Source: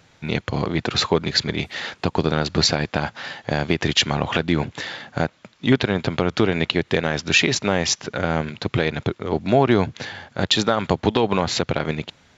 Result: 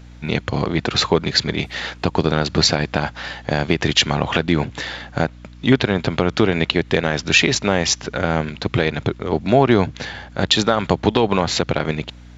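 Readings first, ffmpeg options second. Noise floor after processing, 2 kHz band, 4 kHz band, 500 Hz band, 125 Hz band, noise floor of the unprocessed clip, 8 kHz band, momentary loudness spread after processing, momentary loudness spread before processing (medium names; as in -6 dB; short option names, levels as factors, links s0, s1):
-41 dBFS, +2.5 dB, +2.5 dB, +2.5 dB, +2.5 dB, -57 dBFS, no reading, 9 LU, 9 LU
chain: -af "aeval=exprs='val(0)+0.00794*(sin(2*PI*60*n/s)+sin(2*PI*2*60*n/s)/2+sin(2*PI*3*60*n/s)/3+sin(2*PI*4*60*n/s)/4+sin(2*PI*5*60*n/s)/5)':c=same,volume=1.33"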